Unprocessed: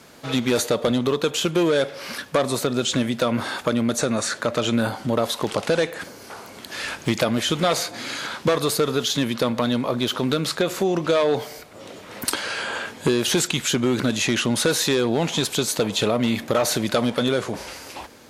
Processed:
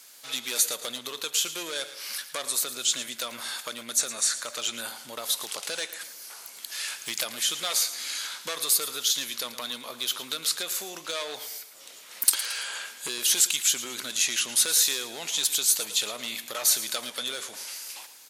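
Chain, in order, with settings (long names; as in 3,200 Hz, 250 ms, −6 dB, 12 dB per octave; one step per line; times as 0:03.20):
first difference
repeating echo 112 ms, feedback 40%, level −13.5 dB
level +4 dB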